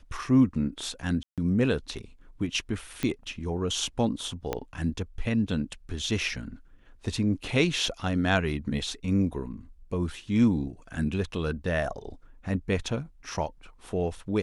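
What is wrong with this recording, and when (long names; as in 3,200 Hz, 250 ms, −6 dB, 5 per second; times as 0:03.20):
0:01.23–0:01.38: drop-out 147 ms
0:03.03: click −15 dBFS
0:04.53: click −14 dBFS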